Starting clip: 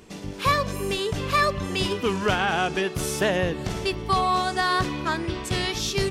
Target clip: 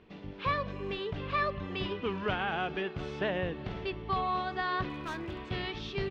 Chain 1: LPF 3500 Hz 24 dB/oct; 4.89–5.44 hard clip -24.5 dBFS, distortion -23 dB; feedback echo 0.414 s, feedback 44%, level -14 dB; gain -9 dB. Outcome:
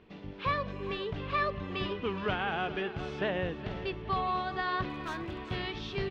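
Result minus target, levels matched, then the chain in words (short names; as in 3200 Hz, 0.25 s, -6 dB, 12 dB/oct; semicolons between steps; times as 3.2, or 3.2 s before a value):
echo-to-direct +10 dB
LPF 3500 Hz 24 dB/oct; 4.89–5.44 hard clip -24.5 dBFS, distortion -23 dB; feedback echo 0.414 s, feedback 44%, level -24 dB; gain -9 dB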